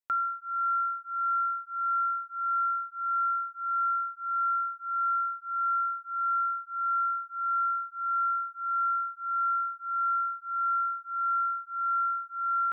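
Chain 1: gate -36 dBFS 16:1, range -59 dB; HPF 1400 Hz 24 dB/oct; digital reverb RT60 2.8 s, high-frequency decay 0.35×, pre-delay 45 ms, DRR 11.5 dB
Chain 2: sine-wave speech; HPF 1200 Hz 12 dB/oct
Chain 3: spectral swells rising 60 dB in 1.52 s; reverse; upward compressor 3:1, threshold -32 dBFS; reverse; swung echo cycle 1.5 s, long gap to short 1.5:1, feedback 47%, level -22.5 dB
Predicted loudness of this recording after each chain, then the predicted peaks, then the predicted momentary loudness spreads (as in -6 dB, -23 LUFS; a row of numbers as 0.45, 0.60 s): -31.5, -31.0, -28.0 LUFS; -26.0, -21.5, -17.0 dBFS; 4, 4, 3 LU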